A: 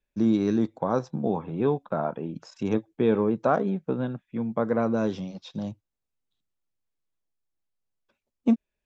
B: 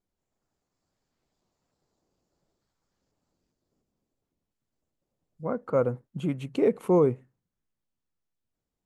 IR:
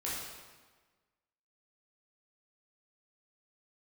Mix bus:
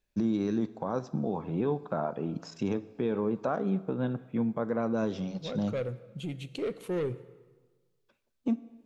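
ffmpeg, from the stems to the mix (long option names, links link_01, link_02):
-filter_complex "[0:a]alimiter=limit=-22dB:level=0:latency=1:release=276,volume=1dB,asplit=2[link_01][link_02];[link_02]volume=-18dB[link_03];[1:a]asoftclip=type=tanh:threshold=-20dB,equalizer=frequency=250:width_type=o:width=1:gain=-7,equalizer=frequency=1000:width_type=o:width=1:gain=-12,equalizer=frequency=4000:width_type=o:width=1:gain=8,volume=-3dB,asplit=2[link_04][link_05];[link_05]volume=-16.5dB[link_06];[2:a]atrim=start_sample=2205[link_07];[link_03][link_06]amix=inputs=2:normalize=0[link_08];[link_08][link_07]afir=irnorm=-1:irlink=0[link_09];[link_01][link_04][link_09]amix=inputs=3:normalize=0"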